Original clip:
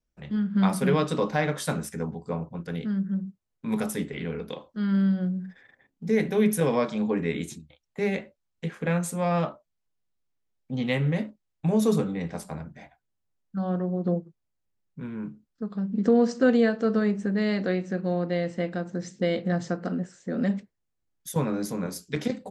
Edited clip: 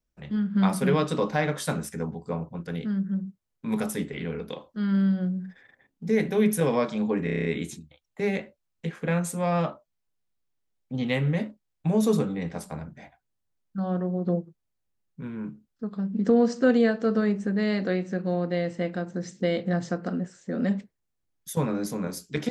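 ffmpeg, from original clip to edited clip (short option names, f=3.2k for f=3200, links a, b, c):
-filter_complex "[0:a]asplit=8[a][b][c][d][e][f][g][h];[a]atrim=end=7.272[i];[b]atrim=start=7.238:end=7.272[j];[c]atrim=start=7.238:end=7.272[k];[d]atrim=start=7.238:end=7.272[l];[e]atrim=start=7.238:end=7.272[m];[f]atrim=start=7.238:end=7.272[n];[g]atrim=start=7.238:end=7.272[o];[h]atrim=start=7.238[p];[i][j]acrossfade=d=0.004:c1=hsin:c2=hsin[q];[q][k]acrossfade=d=0.004:c1=hsin:c2=hsin[r];[r][l]acrossfade=d=0.004:c1=hsin:c2=hsin[s];[s][m]acrossfade=d=0.004:c1=hsin:c2=hsin[t];[t][n]acrossfade=d=0.004:c1=hsin:c2=hsin[u];[u][o]acrossfade=d=0.004:c1=hsin:c2=hsin[v];[v][p]acrossfade=d=0.004:c1=hsin:c2=hsin"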